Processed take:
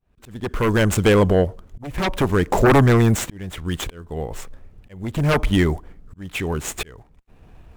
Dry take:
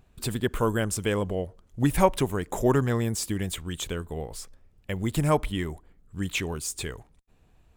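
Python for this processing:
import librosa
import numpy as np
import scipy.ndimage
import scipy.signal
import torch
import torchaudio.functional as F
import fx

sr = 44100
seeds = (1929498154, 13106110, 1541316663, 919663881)

y = scipy.signal.medfilt(x, 9)
y = fx.fold_sine(y, sr, drive_db=13, ceiling_db=-6.5)
y = fx.auto_swell(y, sr, attack_ms=699.0)
y = F.gain(torch.from_numpy(y), -2.5).numpy()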